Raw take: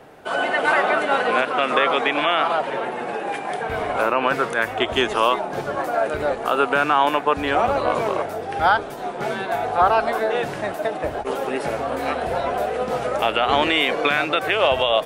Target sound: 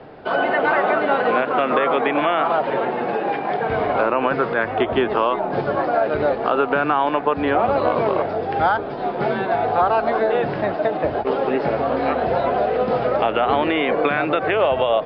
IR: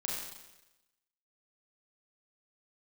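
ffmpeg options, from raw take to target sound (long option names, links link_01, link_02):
-filter_complex "[0:a]tiltshelf=frequency=970:gain=3.5,acrossover=split=83|2500[link_01][link_02][link_03];[link_01]acompressor=threshold=-53dB:ratio=4[link_04];[link_02]acompressor=threshold=-18dB:ratio=4[link_05];[link_03]acompressor=threshold=-45dB:ratio=4[link_06];[link_04][link_05][link_06]amix=inputs=3:normalize=0,aresample=11025,aresample=44100,volume=3.5dB"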